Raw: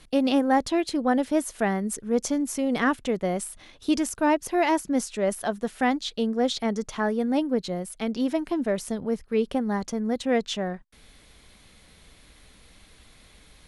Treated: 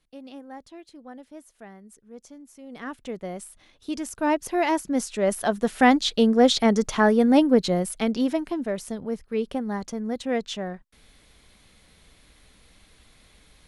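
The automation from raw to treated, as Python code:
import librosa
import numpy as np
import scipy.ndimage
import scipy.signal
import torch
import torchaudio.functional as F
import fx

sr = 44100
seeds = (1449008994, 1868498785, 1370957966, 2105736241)

y = fx.gain(x, sr, db=fx.line((2.55, -20.0), (3.08, -7.5), (3.92, -7.5), (4.32, -0.5), (4.89, -0.5), (5.92, 7.0), (7.83, 7.0), (8.61, -2.5)))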